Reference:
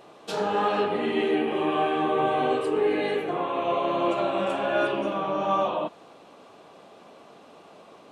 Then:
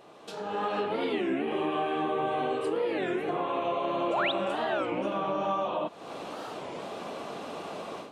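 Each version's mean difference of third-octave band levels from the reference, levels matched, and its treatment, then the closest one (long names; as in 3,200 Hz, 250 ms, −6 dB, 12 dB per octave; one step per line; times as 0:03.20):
5.0 dB: downward compressor 4 to 1, threshold −42 dBFS, peak gain reduction 18.5 dB
sound drawn into the spectrogram rise, 0:04.10–0:04.32, 420–4,100 Hz −41 dBFS
automatic gain control gain up to 15 dB
wow of a warped record 33 1/3 rpm, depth 250 cents
level −3.5 dB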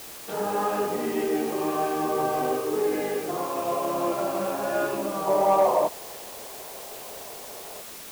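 9.5 dB: low-pass filter 1,800 Hz 12 dB per octave
gain on a spectral selection 0:05.27–0:07.81, 350–1,100 Hz +9 dB
in parallel at −4 dB: soft clipping −15.5 dBFS, distortion −15 dB
on the sum: bit-depth reduction 6 bits, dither triangular
level −5.5 dB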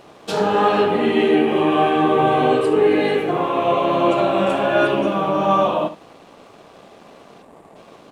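2.0 dB: time-frequency box erased 0:07.42–0:07.76, 1,200–6,700 Hz
low-shelf EQ 180 Hz +8 dB
dead-zone distortion −56.5 dBFS
on a send: single-tap delay 71 ms −13.5 dB
on the sum: level +7 dB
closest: third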